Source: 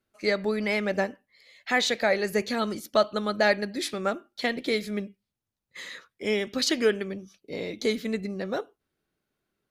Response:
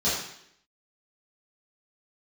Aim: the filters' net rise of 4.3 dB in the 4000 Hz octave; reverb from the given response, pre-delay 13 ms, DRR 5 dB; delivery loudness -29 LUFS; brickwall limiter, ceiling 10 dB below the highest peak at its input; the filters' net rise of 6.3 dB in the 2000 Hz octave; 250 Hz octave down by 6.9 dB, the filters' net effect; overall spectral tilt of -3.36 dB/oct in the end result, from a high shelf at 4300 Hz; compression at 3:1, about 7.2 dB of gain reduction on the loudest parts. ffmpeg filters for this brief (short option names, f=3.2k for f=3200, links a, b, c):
-filter_complex "[0:a]equalizer=f=250:t=o:g=-9,equalizer=f=2k:t=o:g=7,equalizer=f=4k:t=o:g=5.5,highshelf=f=4.3k:g=-4.5,acompressor=threshold=-24dB:ratio=3,alimiter=limit=-22.5dB:level=0:latency=1,asplit=2[a][b];[1:a]atrim=start_sample=2205,adelay=13[c];[b][c]afir=irnorm=-1:irlink=0,volume=-17.5dB[d];[a][d]amix=inputs=2:normalize=0,volume=3dB"